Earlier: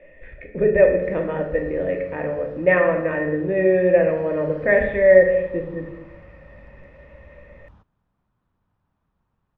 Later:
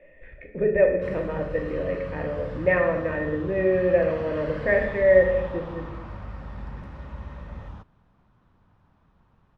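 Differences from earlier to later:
speech -4.5 dB; background +11.0 dB

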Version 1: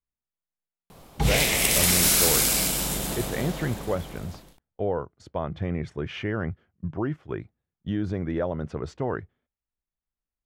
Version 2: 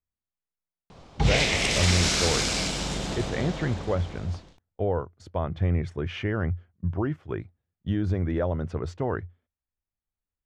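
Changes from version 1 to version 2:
background: add low-pass 6.4 kHz 24 dB/octave; master: add peaking EQ 88 Hz +10.5 dB 0.29 oct

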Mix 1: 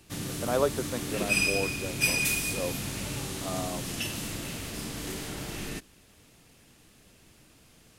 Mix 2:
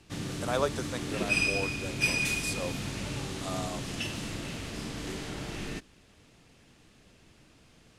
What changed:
speech: add tilt EQ +3.5 dB/octave; master: add distance through air 62 m

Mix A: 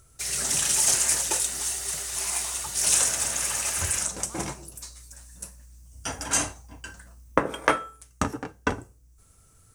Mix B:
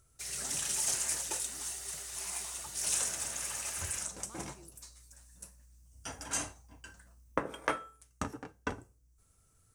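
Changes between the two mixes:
speech -5.5 dB; background -10.5 dB

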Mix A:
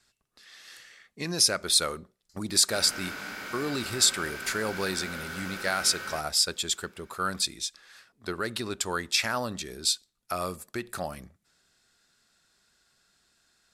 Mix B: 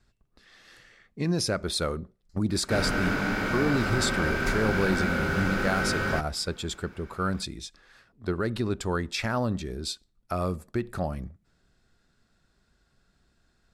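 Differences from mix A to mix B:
background +10.5 dB; master: add tilt EQ -3.5 dB/octave

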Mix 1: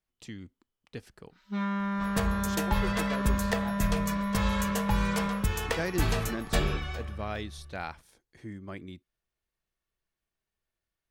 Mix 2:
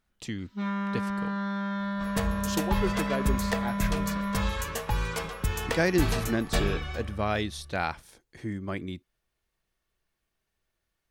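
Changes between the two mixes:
speech +7.5 dB; first sound: entry -0.95 s

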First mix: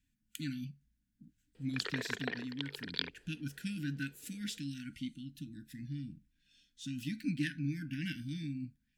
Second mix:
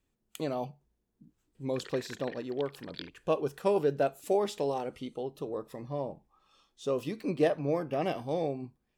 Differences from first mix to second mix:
speech: remove brick-wall FIR band-stop 310–1400 Hz; background -7.5 dB

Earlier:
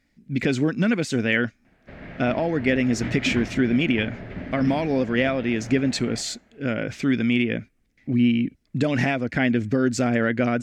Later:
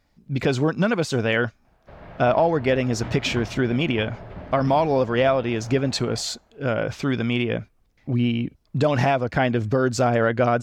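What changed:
speech +5.5 dB; master: add graphic EQ 250/1000/2000/8000 Hz -10/+8/-11/-6 dB

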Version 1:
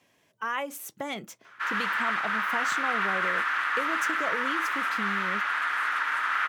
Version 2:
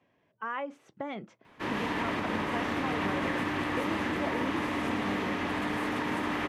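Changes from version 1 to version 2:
speech: add tape spacing loss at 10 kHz 36 dB; background: remove resonant high-pass 1.4 kHz, resonance Q 6.3

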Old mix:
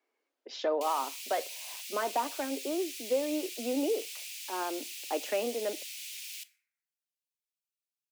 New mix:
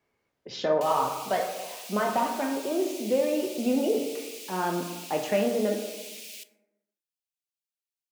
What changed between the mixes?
speech: send on; master: remove steep high-pass 260 Hz 48 dB/octave

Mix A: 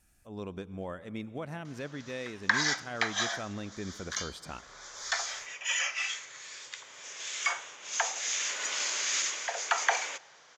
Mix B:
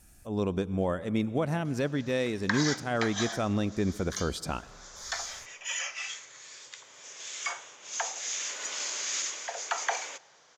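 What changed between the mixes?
speech +11.0 dB; master: add peaking EQ 2 kHz -5 dB 2.2 oct

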